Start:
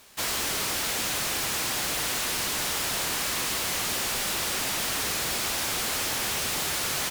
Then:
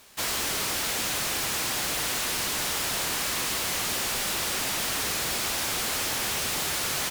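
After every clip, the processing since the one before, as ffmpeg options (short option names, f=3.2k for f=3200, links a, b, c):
-af anull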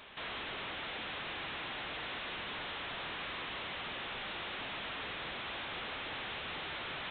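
-af "aresample=8000,asoftclip=type=tanh:threshold=-37dB,aresample=44100,alimiter=level_in=16dB:limit=-24dB:level=0:latency=1,volume=-16dB,lowshelf=f=380:g=-4,volume=5dB"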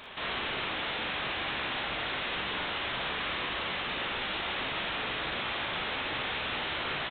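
-af "aecho=1:1:41|57:0.562|0.562,volume=5.5dB"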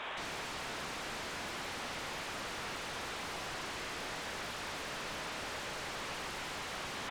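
-filter_complex "[0:a]highpass=390,aeval=exprs='0.0126*(abs(mod(val(0)/0.0126+3,4)-2)-1)':c=same,asplit=2[a][b];[b]highpass=f=720:p=1,volume=13dB,asoftclip=type=tanh:threshold=-37.5dB[c];[a][c]amix=inputs=2:normalize=0,lowpass=f=1.3k:p=1,volume=-6dB,volume=6.5dB"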